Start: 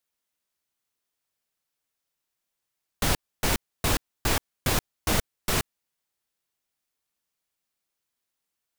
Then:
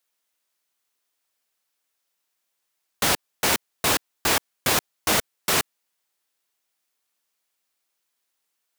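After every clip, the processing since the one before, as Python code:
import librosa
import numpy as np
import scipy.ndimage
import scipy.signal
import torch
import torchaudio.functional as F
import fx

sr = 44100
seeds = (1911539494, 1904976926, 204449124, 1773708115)

y = fx.highpass(x, sr, hz=410.0, slope=6)
y = y * 10.0 ** (6.0 / 20.0)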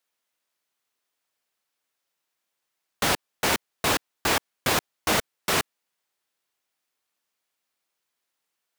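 y = fx.high_shelf(x, sr, hz=4800.0, db=-6.0)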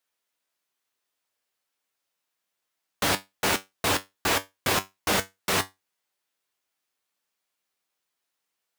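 y = fx.comb_fb(x, sr, f0_hz=96.0, decay_s=0.19, harmonics='all', damping=0.0, mix_pct=70)
y = y * 10.0 ** (4.0 / 20.0)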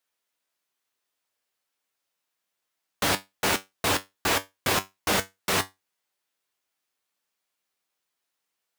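y = x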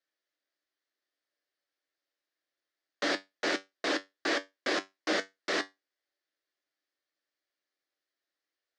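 y = fx.cabinet(x, sr, low_hz=250.0, low_slope=24, high_hz=5800.0, hz=(320.0, 580.0, 930.0, 1800.0, 2600.0, 4600.0), db=(10, 6, -8, 7, -4, 3))
y = y * 10.0 ** (-6.5 / 20.0)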